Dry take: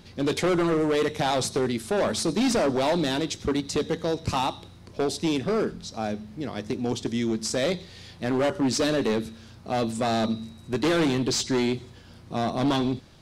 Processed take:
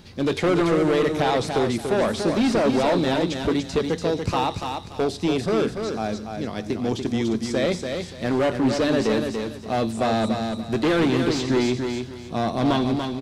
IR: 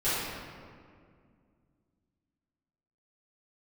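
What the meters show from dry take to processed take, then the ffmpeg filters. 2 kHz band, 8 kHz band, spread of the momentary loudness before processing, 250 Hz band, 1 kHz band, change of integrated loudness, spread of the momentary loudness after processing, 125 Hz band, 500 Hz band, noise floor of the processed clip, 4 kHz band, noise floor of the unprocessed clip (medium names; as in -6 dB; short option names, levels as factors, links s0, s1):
+3.0 dB, -4.5 dB, 10 LU, +3.5 dB, +3.5 dB, +3.0 dB, 8 LU, +3.5 dB, +3.5 dB, -37 dBFS, +0.5 dB, -48 dBFS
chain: -filter_complex "[0:a]aecho=1:1:288|576|864:0.501|0.13|0.0339,acrossover=split=3700[s0][s1];[s1]acompressor=threshold=0.00891:ratio=4:attack=1:release=60[s2];[s0][s2]amix=inputs=2:normalize=0,volume=1.33"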